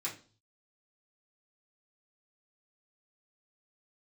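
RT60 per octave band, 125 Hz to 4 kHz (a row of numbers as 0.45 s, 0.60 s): 0.80 s, 0.45 s, 0.40 s, 0.35 s, 0.30 s, 0.40 s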